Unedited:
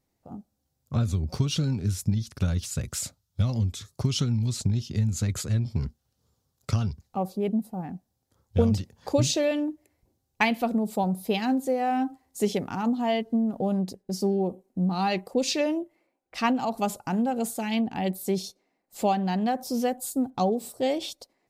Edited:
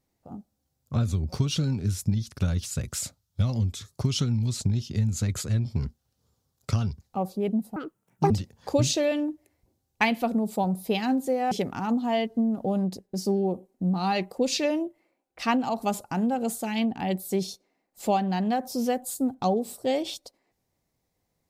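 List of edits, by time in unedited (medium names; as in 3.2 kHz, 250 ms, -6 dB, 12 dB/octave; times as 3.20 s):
7.76–8.70 s: speed 173%
11.91–12.47 s: delete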